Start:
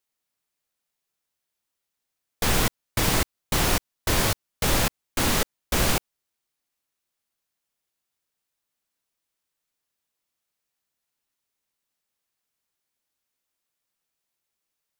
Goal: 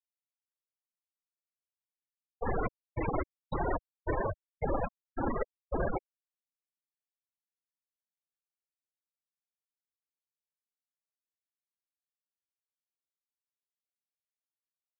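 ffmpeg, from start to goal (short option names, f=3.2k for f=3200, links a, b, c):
-filter_complex "[0:a]adynamicequalizer=threshold=0.00891:dfrequency=4600:dqfactor=0.81:tfrequency=4600:tqfactor=0.81:attack=5:release=100:ratio=0.375:range=3:mode=cutabove:tftype=bell,acrossover=split=300|3000[a][b][c];[a]acompressor=threshold=-46dB:ratio=1.5[d];[d][b][c]amix=inputs=3:normalize=0,afftfilt=real='re*gte(hypot(re,im),0.141)':imag='im*gte(hypot(re,im),0.141)':win_size=1024:overlap=0.75"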